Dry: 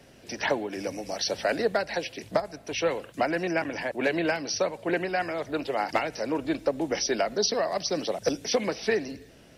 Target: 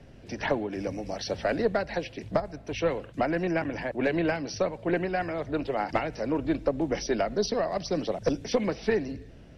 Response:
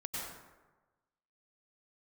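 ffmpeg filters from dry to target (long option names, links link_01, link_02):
-af "aemphasis=mode=reproduction:type=bsi,aeval=exprs='0.282*(cos(1*acos(clip(val(0)/0.282,-1,1)))-cos(1*PI/2))+0.0316*(cos(2*acos(clip(val(0)/0.282,-1,1)))-cos(2*PI/2))':channel_layout=same,volume=-2dB"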